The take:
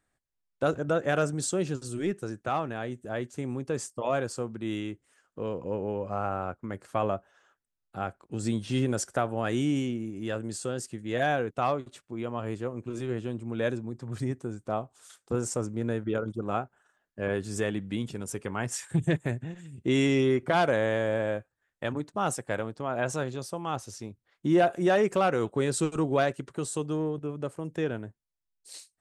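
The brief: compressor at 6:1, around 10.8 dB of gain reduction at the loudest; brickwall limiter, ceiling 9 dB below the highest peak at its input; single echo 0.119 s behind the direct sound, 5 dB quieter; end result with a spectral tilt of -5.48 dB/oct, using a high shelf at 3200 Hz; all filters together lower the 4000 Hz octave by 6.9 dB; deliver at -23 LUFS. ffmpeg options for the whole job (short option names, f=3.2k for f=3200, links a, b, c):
-af "highshelf=f=3.2k:g=-4,equalizer=f=4k:t=o:g=-6.5,acompressor=threshold=-30dB:ratio=6,alimiter=level_in=2dB:limit=-24dB:level=0:latency=1,volume=-2dB,aecho=1:1:119:0.562,volume=13.5dB"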